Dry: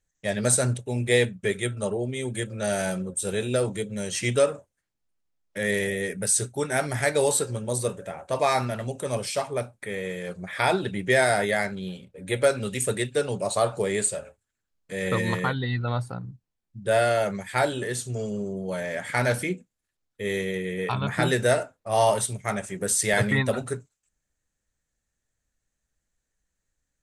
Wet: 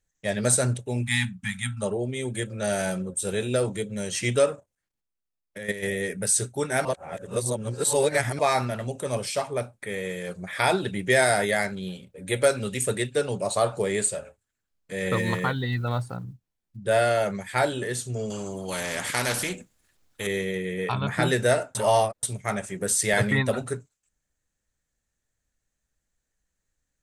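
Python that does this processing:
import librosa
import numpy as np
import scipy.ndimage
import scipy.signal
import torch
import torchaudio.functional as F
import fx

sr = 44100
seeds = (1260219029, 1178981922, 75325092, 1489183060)

y = fx.spec_erase(x, sr, start_s=1.03, length_s=0.79, low_hz=270.0, high_hz=760.0)
y = fx.level_steps(y, sr, step_db=12, at=(4.54, 5.82), fade=0.02)
y = fx.high_shelf(y, sr, hz=5600.0, db=5.5, at=(9.87, 12.63))
y = fx.block_float(y, sr, bits=7, at=(15.12, 16.79))
y = fx.spectral_comp(y, sr, ratio=2.0, at=(18.3, 20.27))
y = fx.edit(y, sr, fx.reverse_span(start_s=6.85, length_s=1.54),
    fx.reverse_span(start_s=21.75, length_s=0.48), tone=tone)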